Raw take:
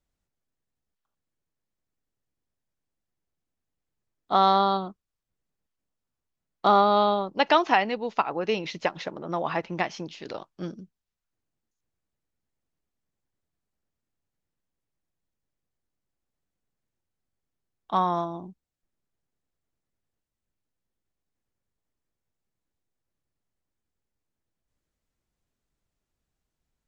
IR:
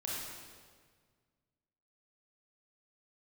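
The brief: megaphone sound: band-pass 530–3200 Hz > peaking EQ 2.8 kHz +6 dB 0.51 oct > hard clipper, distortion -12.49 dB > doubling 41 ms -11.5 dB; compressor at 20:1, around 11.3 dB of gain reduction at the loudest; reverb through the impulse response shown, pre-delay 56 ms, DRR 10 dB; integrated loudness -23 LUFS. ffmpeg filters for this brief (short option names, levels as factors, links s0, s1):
-filter_complex "[0:a]acompressor=threshold=0.0562:ratio=20,asplit=2[s0][s1];[1:a]atrim=start_sample=2205,adelay=56[s2];[s1][s2]afir=irnorm=-1:irlink=0,volume=0.237[s3];[s0][s3]amix=inputs=2:normalize=0,highpass=530,lowpass=3200,equalizer=f=2800:t=o:w=0.51:g=6,asoftclip=type=hard:threshold=0.0531,asplit=2[s4][s5];[s5]adelay=41,volume=0.266[s6];[s4][s6]amix=inputs=2:normalize=0,volume=3.76"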